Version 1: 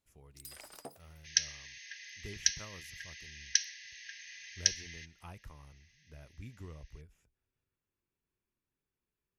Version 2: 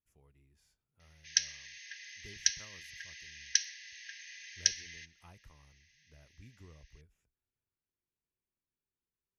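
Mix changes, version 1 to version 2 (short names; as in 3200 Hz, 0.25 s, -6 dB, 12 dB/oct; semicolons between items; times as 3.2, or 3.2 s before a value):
speech -7.5 dB; first sound: muted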